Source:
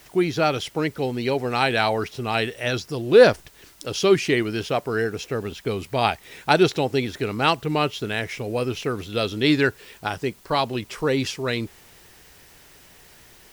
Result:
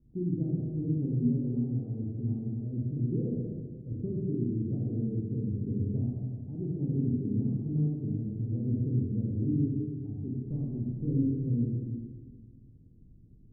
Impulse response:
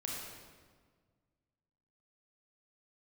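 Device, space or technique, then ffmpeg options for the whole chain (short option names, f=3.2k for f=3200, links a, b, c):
club heard from the street: -filter_complex "[0:a]alimiter=limit=-12.5dB:level=0:latency=1:release=478,lowpass=f=250:w=0.5412,lowpass=f=250:w=1.3066[a];[1:a]atrim=start_sample=2205[b];[a][b]afir=irnorm=-1:irlink=0"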